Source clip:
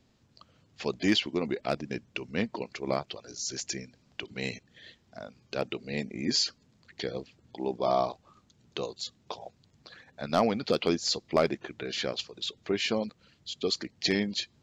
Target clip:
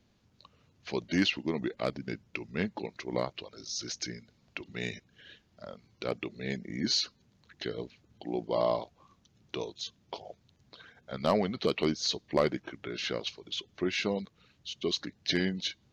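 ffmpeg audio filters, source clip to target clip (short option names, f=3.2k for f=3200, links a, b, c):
-af "asetrate=40517,aresample=44100,volume=-2dB"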